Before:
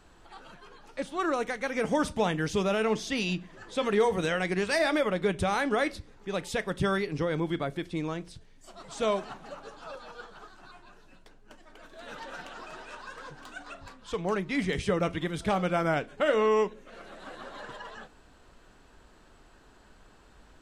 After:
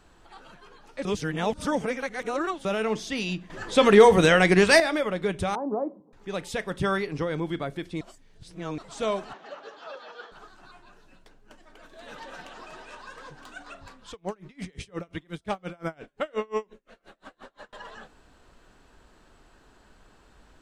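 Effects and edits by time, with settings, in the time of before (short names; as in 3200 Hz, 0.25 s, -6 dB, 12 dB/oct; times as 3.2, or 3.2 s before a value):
1.05–2.65 reverse
3.5–4.8 gain +10.5 dB
5.55–6.13 Chebyshev band-pass 160–1000 Hz, order 4
6.71–7.24 dynamic EQ 1000 Hz, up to +4 dB, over -43 dBFS, Q 0.82
8.01–8.78 reverse
9.33–10.32 speaker cabinet 320–6100 Hz, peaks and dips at 410 Hz +4 dB, 640 Hz +3 dB, 1800 Hz +6 dB, 3200 Hz +5 dB
11.87–13.37 notch 1400 Hz
14.11–17.73 dB-linear tremolo 5.7 Hz, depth 33 dB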